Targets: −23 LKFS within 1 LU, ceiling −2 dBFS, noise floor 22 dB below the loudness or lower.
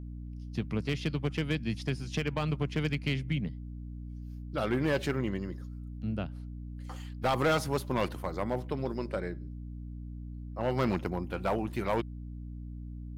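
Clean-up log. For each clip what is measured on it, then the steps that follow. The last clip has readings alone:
share of clipped samples 1.0%; peaks flattened at −22.0 dBFS; mains hum 60 Hz; hum harmonics up to 300 Hz; level of the hum −39 dBFS; integrated loudness −34.0 LKFS; sample peak −22.0 dBFS; target loudness −23.0 LKFS
→ clipped peaks rebuilt −22 dBFS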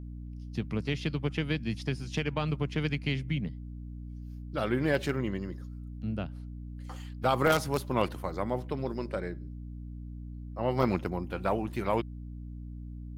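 share of clipped samples 0.0%; mains hum 60 Hz; hum harmonics up to 300 Hz; level of the hum −39 dBFS
→ mains-hum notches 60/120/180/240/300 Hz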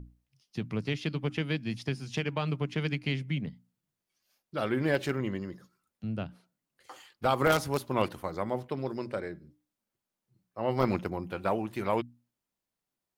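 mains hum none found; integrated loudness −32.0 LKFS; sample peak −12.0 dBFS; target loudness −23.0 LKFS
→ level +9 dB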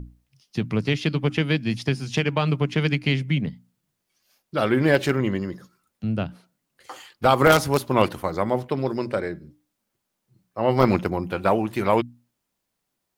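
integrated loudness −23.5 LKFS; sample peak −3.0 dBFS; background noise floor −79 dBFS

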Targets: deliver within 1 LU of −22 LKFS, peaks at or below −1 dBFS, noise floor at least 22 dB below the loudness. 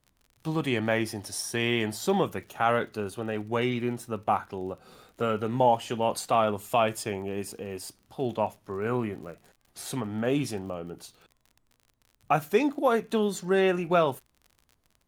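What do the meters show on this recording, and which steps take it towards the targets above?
crackle rate 42 per second; integrated loudness −28.5 LKFS; sample peak −10.5 dBFS; target loudness −22.0 LKFS
→ click removal
level +6.5 dB

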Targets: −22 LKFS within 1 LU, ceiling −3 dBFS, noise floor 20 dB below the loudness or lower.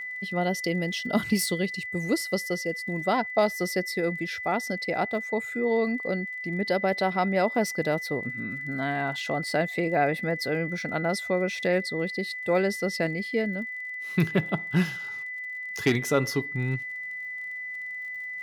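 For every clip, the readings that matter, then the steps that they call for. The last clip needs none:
crackle rate 38 per second; interfering tone 2,000 Hz; level of the tone −33 dBFS; integrated loudness −28.0 LKFS; sample peak −11.0 dBFS; target loudness −22.0 LKFS
→ click removal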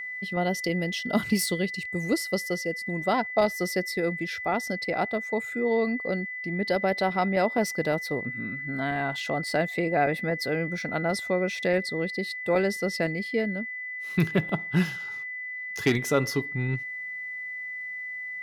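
crackle rate 0.33 per second; interfering tone 2,000 Hz; level of the tone −33 dBFS
→ notch filter 2,000 Hz, Q 30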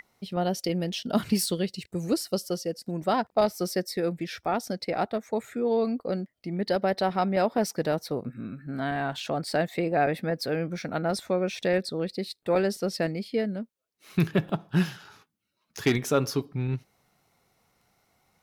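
interfering tone none found; integrated loudness −28.5 LKFS; sample peak −11.5 dBFS; target loudness −22.0 LKFS
→ level +6.5 dB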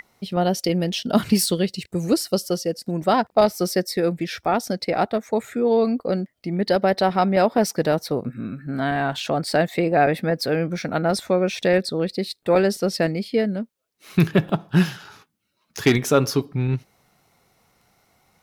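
integrated loudness −22.0 LKFS; sample peak −5.0 dBFS; background noise floor −71 dBFS

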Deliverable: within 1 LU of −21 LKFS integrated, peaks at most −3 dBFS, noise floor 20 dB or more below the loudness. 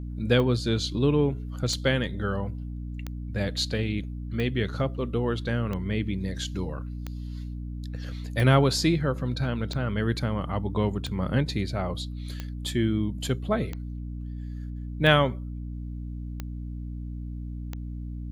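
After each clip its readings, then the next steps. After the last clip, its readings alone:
number of clicks 14; mains hum 60 Hz; hum harmonics up to 300 Hz; level of the hum −32 dBFS; integrated loudness −28.5 LKFS; sample peak −6.0 dBFS; target loudness −21.0 LKFS
→ click removal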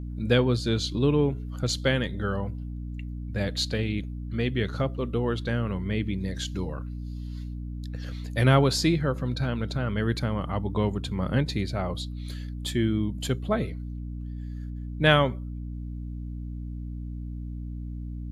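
number of clicks 0; mains hum 60 Hz; hum harmonics up to 300 Hz; level of the hum −32 dBFS
→ mains-hum notches 60/120/180/240/300 Hz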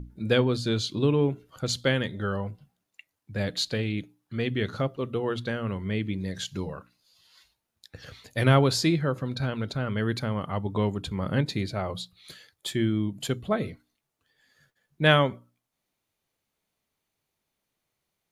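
mains hum none found; integrated loudness −27.5 LKFS; sample peak −5.5 dBFS; target loudness −21.0 LKFS
→ level +6.5 dB
brickwall limiter −3 dBFS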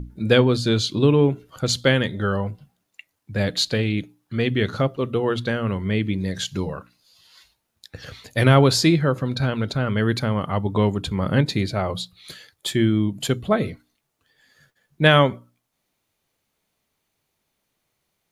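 integrated loudness −21.5 LKFS; sample peak −3.0 dBFS; background noise floor −76 dBFS

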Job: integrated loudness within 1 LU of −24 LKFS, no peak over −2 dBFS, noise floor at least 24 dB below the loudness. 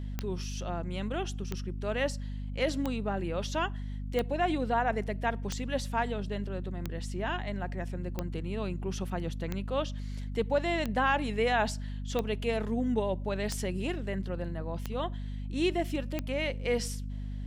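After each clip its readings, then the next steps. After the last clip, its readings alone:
number of clicks 13; mains hum 50 Hz; hum harmonics up to 250 Hz; level of the hum −34 dBFS; integrated loudness −33.0 LKFS; sample peak −16.0 dBFS; target loudness −24.0 LKFS
→ click removal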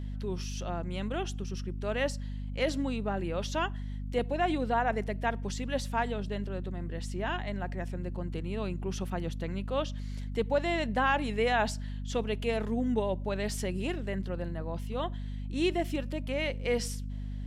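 number of clicks 0; mains hum 50 Hz; hum harmonics up to 250 Hz; level of the hum −34 dBFS
→ hum removal 50 Hz, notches 5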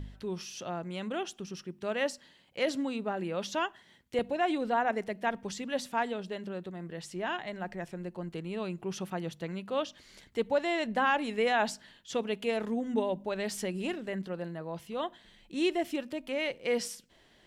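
mains hum none found; integrated loudness −33.5 LKFS; sample peak −17.0 dBFS; target loudness −24.0 LKFS
→ level +9.5 dB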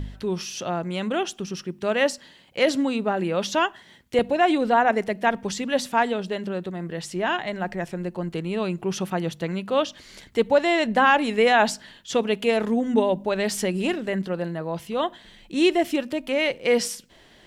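integrated loudness −24.0 LKFS; sample peak −7.5 dBFS; background noise floor −53 dBFS

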